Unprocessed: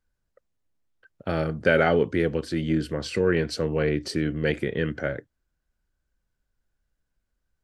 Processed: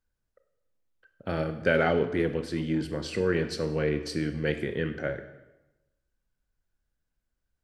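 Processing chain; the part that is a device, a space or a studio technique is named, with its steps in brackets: saturated reverb return (on a send at -8 dB: reverb RT60 1.0 s, pre-delay 26 ms + soft clip -17 dBFS, distortion -15 dB); on the sum: gain -4 dB

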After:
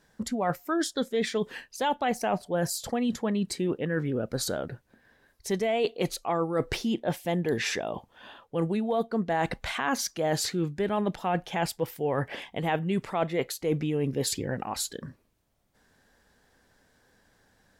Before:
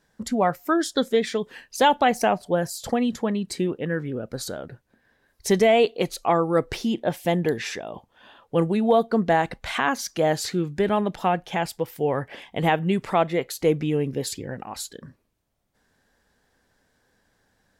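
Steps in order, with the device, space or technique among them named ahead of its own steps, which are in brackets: compression on the reversed sound (reverse; compressor 6:1, threshold -27 dBFS, peak gain reduction 13 dB; reverse); gain +2.5 dB

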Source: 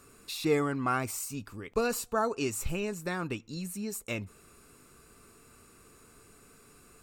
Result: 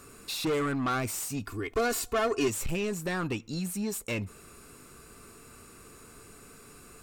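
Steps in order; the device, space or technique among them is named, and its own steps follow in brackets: saturation between pre-emphasis and de-emphasis (high shelf 6000 Hz +8.5 dB; soft clip -31 dBFS, distortion -8 dB; high shelf 6000 Hz -8.5 dB); 1.47–2.48 comb 2.8 ms, depth 82%; gain +6 dB

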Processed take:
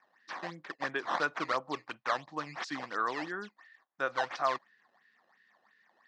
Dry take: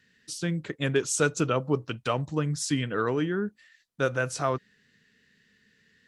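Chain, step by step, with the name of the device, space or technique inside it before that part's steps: circuit-bent sampling toy (decimation with a swept rate 11×, swing 160% 2.9 Hz; speaker cabinet 410–5000 Hz, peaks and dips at 440 Hz -8 dB, 770 Hz +6 dB, 1100 Hz +8 dB, 1800 Hz +6 dB, 2900 Hz -4 dB); gain -5.5 dB

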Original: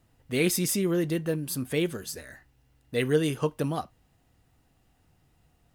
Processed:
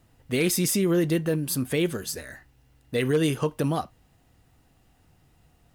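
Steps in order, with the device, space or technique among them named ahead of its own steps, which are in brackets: clipper into limiter (hard clip -16 dBFS, distortion -26 dB; limiter -20 dBFS, peak gain reduction 4 dB); gain +4.5 dB

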